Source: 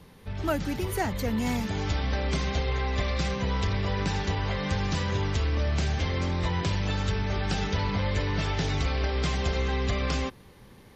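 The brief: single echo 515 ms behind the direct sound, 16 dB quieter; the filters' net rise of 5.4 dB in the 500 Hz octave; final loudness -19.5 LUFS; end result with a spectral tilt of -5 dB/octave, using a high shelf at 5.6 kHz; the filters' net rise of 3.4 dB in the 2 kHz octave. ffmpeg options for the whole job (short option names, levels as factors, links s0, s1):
-af "equalizer=f=500:t=o:g=6.5,equalizer=f=2000:t=o:g=4.5,highshelf=f=5600:g=-6.5,aecho=1:1:515:0.158,volume=2.37"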